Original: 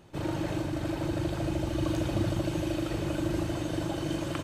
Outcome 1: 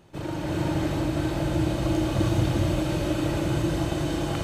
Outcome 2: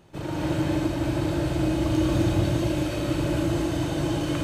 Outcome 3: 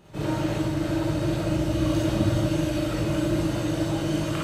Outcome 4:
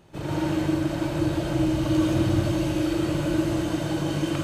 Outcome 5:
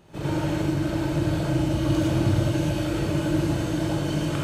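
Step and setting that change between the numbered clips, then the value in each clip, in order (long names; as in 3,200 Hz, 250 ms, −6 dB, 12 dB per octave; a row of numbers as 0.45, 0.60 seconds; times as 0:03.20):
reverb whose tail is shaped and stops, gate: 440, 290, 80, 190, 130 milliseconds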